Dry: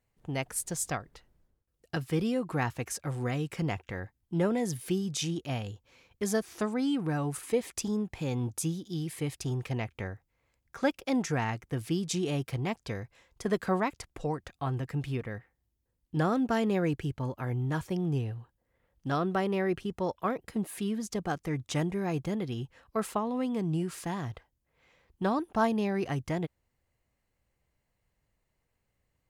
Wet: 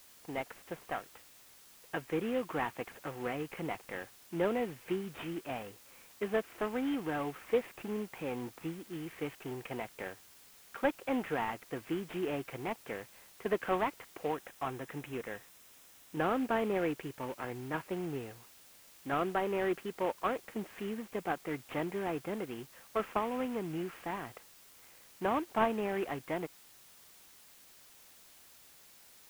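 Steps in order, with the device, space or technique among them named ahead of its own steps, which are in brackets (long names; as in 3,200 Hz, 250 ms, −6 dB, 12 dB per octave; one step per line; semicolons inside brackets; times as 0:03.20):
army field radio (band-pass filter 320–3,000 Hz; variable-slope delta modulation 16 kbit/s; white noise bed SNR 21 dB)
0:14.33–0:16.20: notch filter 4,500 Hz, Q 9.6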